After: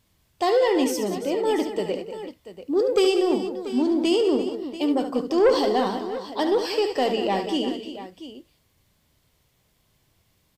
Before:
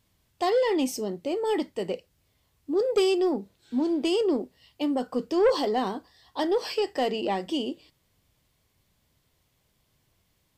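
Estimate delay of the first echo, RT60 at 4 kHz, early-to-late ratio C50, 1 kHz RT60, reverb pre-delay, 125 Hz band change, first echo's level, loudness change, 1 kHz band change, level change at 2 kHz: 72 ms, none, none, none, none, n/a, -9.0 dB, +4.0 dB, +4.0 dB, +4.0 dB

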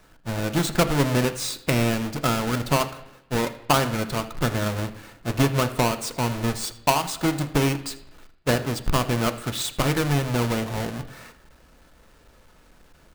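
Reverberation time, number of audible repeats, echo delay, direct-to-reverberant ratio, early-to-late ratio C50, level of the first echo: 0.85 s, 1, 81 ms, 8.5 dB, 13.5 dB, -20.5 dB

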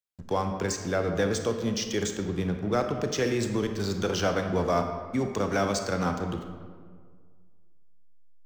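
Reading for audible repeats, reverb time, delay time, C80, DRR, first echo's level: none, 1.8 s, none, 8.0 dB, 5.5 dB, none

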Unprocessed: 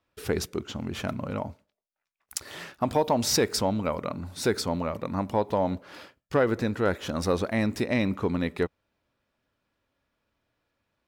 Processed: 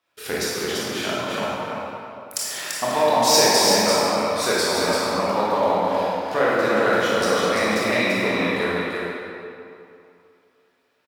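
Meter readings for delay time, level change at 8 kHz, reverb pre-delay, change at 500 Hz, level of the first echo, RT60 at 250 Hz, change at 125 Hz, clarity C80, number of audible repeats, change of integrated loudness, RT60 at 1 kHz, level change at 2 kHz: 0.339 s, +11.0 dB, 20 ms, +7.5 dB, -4.0 dB, 2.4 s, -2.0 dB, -3.5 dB, 1, +7.5 dB, 2.7 s, +12.5 dB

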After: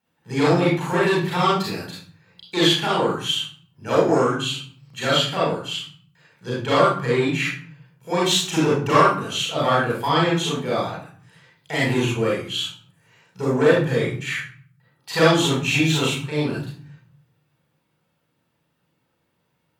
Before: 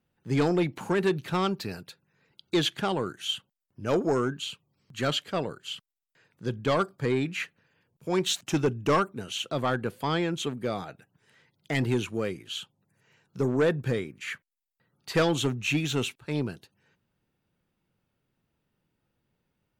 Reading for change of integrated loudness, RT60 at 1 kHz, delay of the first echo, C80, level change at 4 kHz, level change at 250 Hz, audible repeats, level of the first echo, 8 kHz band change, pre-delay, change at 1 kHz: +8.0 dB, 0.50 s, none, 6.0 dB, +9.5 dB, +6.5 dB, none, none, +8.5 dB, 34 ms, +10.5 dB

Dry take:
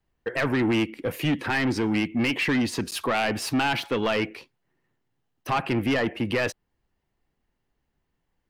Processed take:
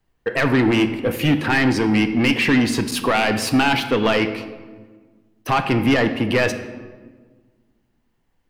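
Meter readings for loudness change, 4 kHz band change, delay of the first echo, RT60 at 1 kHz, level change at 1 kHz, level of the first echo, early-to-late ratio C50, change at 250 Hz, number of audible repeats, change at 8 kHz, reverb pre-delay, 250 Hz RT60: +7.0 dB, +6.5 dB, none, 1.3 s, +6.5 dB, none, 10.5 dB, +7.5 dB, none, +6.0 dB, 4 ms, 2.1 s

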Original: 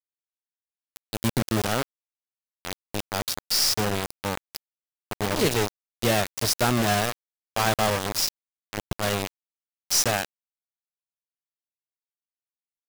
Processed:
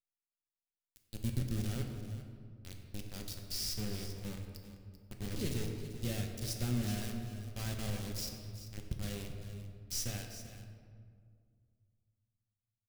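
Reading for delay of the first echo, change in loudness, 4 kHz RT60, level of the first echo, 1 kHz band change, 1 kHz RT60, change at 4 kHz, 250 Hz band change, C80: 0.39 s, -15.0 dB, 1.2 s, -13.5 dB, -25.5 dB, 1.9 s, -16.5 dB, -10.5 dB, 5.0 dB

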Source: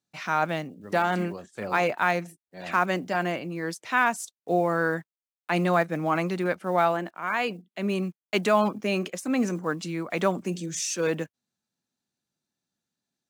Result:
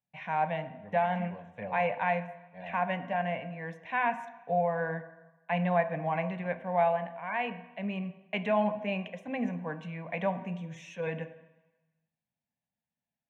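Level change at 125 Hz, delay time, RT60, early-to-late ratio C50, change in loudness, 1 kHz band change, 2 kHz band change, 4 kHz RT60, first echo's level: -4.0 dB, none, 1.1 s, 12.5 dB, -5.5 dB, -4.0 dB, -7.0 dB, 1.1 s, none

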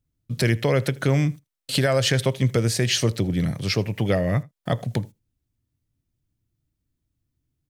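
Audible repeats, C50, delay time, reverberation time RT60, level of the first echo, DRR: 1, none, 80 ms, none, -23.5 dB, none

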